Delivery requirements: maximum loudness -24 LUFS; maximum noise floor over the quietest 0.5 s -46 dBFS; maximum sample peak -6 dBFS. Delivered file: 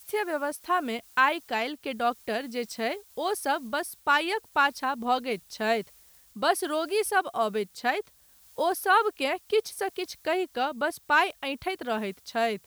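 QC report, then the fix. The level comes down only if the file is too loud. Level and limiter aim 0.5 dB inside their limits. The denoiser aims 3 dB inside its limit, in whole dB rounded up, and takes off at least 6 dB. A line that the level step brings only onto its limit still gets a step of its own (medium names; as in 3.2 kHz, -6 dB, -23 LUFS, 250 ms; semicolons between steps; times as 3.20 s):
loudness -28.0 LUFS: pass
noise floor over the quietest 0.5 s -58 dBFS: pass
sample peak -10.0 dBFS: pass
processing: none needed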